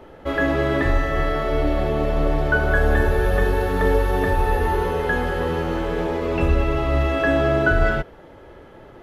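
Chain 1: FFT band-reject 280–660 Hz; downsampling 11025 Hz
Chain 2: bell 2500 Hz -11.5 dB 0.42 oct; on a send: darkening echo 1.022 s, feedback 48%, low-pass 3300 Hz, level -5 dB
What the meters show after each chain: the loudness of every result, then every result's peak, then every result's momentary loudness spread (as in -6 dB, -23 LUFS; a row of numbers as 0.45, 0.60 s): -23.5, -20.5 LUFS; -8.0, -5.5 dBFS; 7, 5 LU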